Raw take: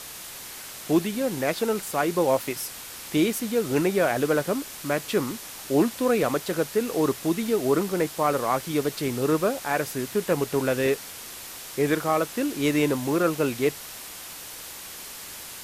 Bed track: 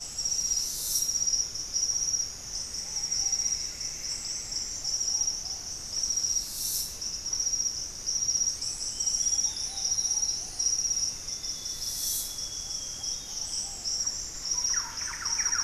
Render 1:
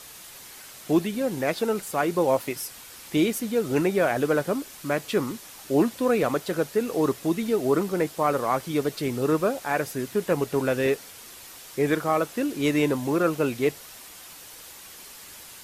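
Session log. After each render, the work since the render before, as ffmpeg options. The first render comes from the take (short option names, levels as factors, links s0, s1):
-af "afftdn=nr=6:nf=-40"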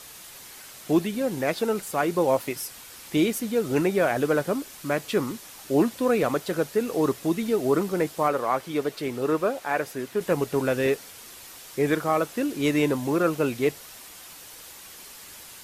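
-filter_complex "[0:a]asettb=1/sr,asplit=3[s0][s1][s2];[s0]atrim=end=8.284[s3];[s1]atrim=start=8.28:end=10.21,asetpts=PTS-STARTPTS,afade=t=in:d=0.004:c=qsin,afade=t=out:st=1.926:d=0.004:c=qsin,bass=f=250:g=-7,treble=f=4000:g=-5[s4];[s2]atrim=start=10.206[s5];[s3][s4]acrossfade=d=0.004:c1=hsin:c2=qsin[s6];[s6][s5]acrossfade=d=0.004:c1=qsin:c2=hsin"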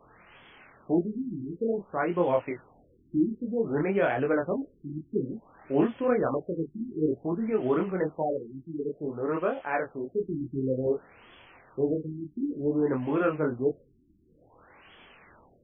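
-af "flanger=delay=22.5:depth=4.4:speed=0.94,afftfilt=real='re*lt(b*sr/1024,360*pow(3500/360,0.5+0.5*sin(2*PI*0.55*pts/sr)))':imag='im*lt(b*sr/1024,360*pow(3500/360,0.5+0.5*sin(2*PI*0.55*pts/sr)))':win_size=1024:overlap=0.75"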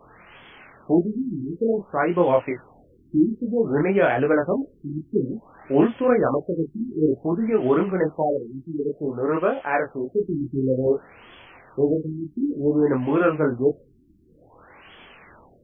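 -af "volume=2.11"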